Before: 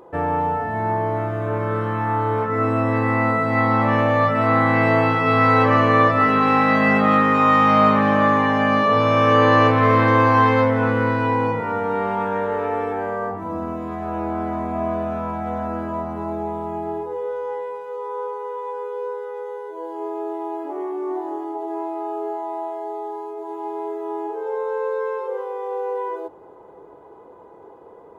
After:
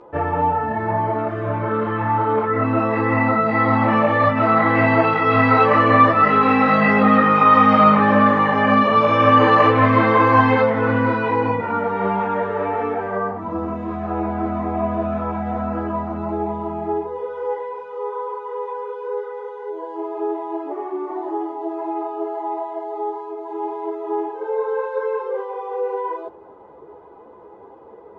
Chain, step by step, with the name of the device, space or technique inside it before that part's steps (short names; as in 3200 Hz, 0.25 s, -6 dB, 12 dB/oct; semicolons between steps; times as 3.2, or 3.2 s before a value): string-machine ensemble chorus (ensemble effect; LPF 4300 Hz 12 dB/oct); 1.5–2.79 LPF 5300 Hz 24 dB/oct; gain +4.5 dB